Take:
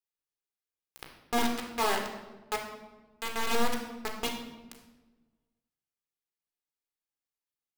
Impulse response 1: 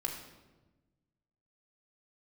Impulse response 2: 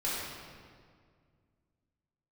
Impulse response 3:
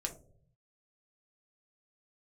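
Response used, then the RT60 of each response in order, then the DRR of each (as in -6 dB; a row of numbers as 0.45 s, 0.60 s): 1; 1.2 s, 2.0 s, no single decay rate; 1.0 dB, -9.0 dB, 2.5 dB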